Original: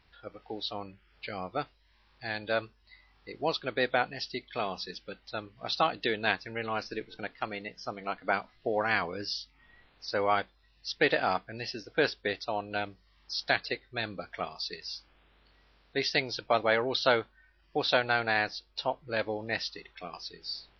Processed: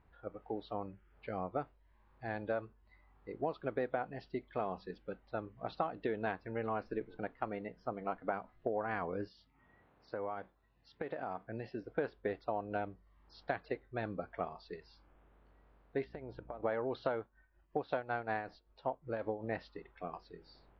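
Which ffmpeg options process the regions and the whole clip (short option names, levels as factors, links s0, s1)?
-filter_complex "[0:a]asettb=1/sr,asplit=3[s0][s1][s2];[s0]atrim=end=9.274[s3];[s1]atrim=start=9.27:end=11.83,asetpts=PTS-STARTPTS,afade=t=in:d=0.004:c=qsin,afade=t=out:st=2.556:d=0.004:c=qsin,highpass=79,acompressor=threshold=0.0224:ratio=12:attack=3.2:release=140:knee=1:detection=peak[s4];[s2]atrim=start=11.826[s5];[s3][s4]acrossfade=d=0.004:c1=hsin:c2=qsin[s6];[s6][s5]acrossfade=d=0.004:c1=qsin:c2=hsin,asettb=1/sr,asplit=3[s7][s8][s9];[s7]atrim=end=16.044[s10];[s8]atrim=start=16.04:end=16.63,asetpts=PTS-STARTPTS,afade=t=in:d=0.004:c=qsin,afade=t=out:st=0.586:d=0.004:c=qsin,lowpass=f=1600:p=1,acompressor=threshold=0.0112:ratio=20:attack=3.2:release=140:knee=1:detection=peak,aeval=exprs='val(0)+0.00126*(sin(2*PI*60*n/s)+sin(2*PI*2*60*n/s)/2+sin(2*PI*3*60*n/s)/3+sin(2*PI*4*60*n/s)/4+sin(2*PI*5*60*n/s)/5)':c=same[s11];[s9]atrim=start=16.626[s12];[s10][s11]acrossfade=d=0.004:c1=hsin:c2=qsin[s13];[s13][s12]acrossfade=d=0.004:c1=qsin:c2=hsin,asettb=1/sr,asplit=3[s14][s15][s16];[s14]atrim=end=17.214[s17];[s15]atrim=start=17.21:end=19.44,asetpts=PTS-STARTPTS,afade=t=in:d=0.004:c=qsin,afade=t=out:st=2.226:d=0.004:c=qsin,bass=f=250:g=0,treble=f=4000:g=4,tremolo=f=5.3:d=0.65[s18];[s16]atrim=start=19.436[s19];[s17][s18]acrossfade=d=0.004:c1=hsin:c2=qsin[s20];[s20][s19]acrossfade=d=0.004:c1=qsin:c2=hsin,lowpass=1100,acompressor=threshold=0.0282:ratio=10"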